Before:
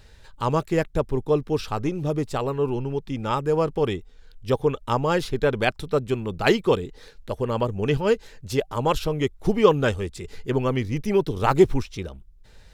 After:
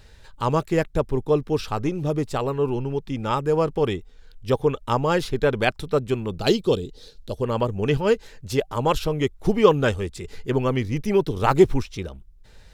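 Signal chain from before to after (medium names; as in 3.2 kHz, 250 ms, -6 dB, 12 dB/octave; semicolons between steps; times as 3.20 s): 6.40–7.42 s: graphic EQ 1/2/4 kHz -7/-12/+7 dB; trim +1 dB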